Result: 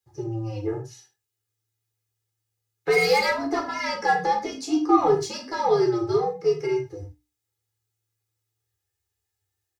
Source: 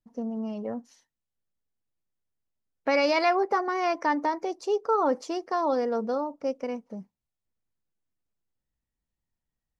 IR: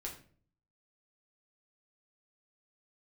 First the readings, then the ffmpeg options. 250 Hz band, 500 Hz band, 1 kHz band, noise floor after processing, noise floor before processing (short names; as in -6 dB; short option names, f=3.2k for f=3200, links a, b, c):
+4.0 dB, +3.5 dB, +2.5 dB, -83 dBFS, under -85 dBFS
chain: -filter_complex "[0:a]afreqshift=-110,highpass=120,highshelf=f=2.6k:g=10.5,bandreject=f=60:t=h:w=6,bandreject=f=120:t=h:w=6,bandreject=f=180:t=h:w=6,bandreject=f=240:t=h:w=6,bandreject=f=300:t=h:w=6,asplit=2[a][b];[b]asoftclip=type=tanh:threshold=-27dB,volume=-6.5dB[c];[a][c]amix=inputs=2:normalize=0,aecho=1:1:2.4:0.69,acrossover=split=370|1300[d][e][f];[f]asoftclip=type=hard:threshold=-21dB[g];[d][e][g]amix=inputs=3:normalize=0[h];[1:a]atrim=start_sample=2205,atrim=end_sample=6174[i];[h][i]afir=irnorm=-1:irlink=0"